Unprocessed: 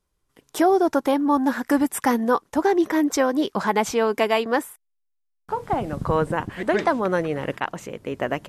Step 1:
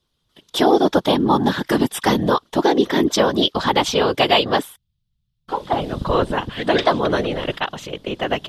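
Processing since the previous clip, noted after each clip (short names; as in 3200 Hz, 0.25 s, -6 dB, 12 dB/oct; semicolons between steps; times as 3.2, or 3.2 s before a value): EQ curve 2300 Hz 0 dB, 3400 Hz +15 dB, 7300 Hz -3 dB; whisperiser; gain +3 dB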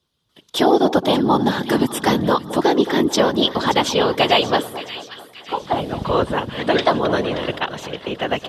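HPF 68 Hz; split-band echo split 1300 Hz, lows 0.218 s, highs 0.577 s, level -13 dB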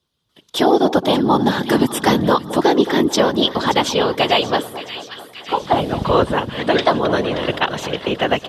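AGC; gain -1 dB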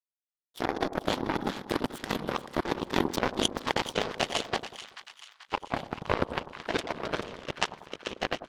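power-law curve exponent 3; negative-ratio compressor -27 dBFS, ratio -0.5; split-band echo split 1100 Hz, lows 95 ms, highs 0.435 s, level -12 dB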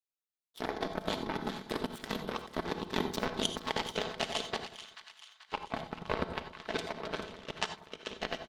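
bell 3800 Hz +3 dB 0.55 oct; comb 4.6 ms, depth 34%; non-linear reverb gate 0.11 s rising, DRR 10 dB; gain -6.5 dB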